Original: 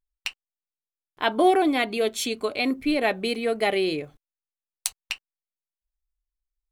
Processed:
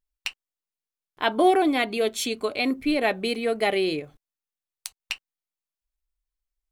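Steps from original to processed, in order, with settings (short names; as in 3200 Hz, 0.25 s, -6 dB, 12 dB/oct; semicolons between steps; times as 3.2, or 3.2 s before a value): 3.99–5 compressor 10:1, threshold -32 dBFS, peak gain reduction 12 dB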